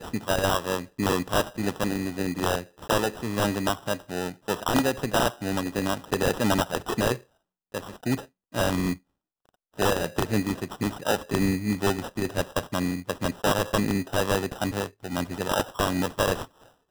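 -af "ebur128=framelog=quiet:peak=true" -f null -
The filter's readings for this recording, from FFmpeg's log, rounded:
Integrated loudness:
  I:         -27.2 LUFS
  Threshold: -37.4 LUFS
Loudness range:
  LRA:         2.4 LU
  Threshold: -47.6 LUFS
  LRA low:   -29.0 LUFS
  LRA high:  -26.6 LUFS
True peak:
  Peak:      -11.2 dBFS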